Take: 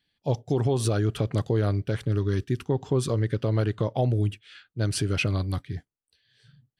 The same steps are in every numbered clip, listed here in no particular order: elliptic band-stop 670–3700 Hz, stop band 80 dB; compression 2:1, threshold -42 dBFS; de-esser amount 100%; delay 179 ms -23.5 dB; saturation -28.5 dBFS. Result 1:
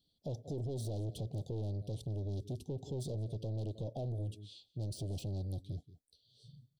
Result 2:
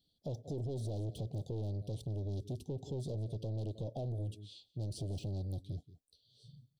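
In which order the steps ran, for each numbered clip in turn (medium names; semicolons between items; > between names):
delay > saturation > compression > de-esser > elliptic band-stop; delay > de-esser > saturation > elliptic band-stop > compression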